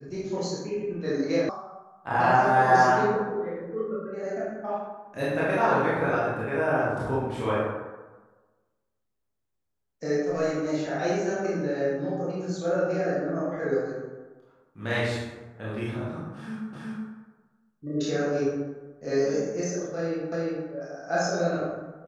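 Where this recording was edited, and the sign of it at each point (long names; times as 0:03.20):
0:01.49: cut off before it has died away
0:16.73: the same again, the last 0.37 s
0:20.32: the same again, the last 0.35 s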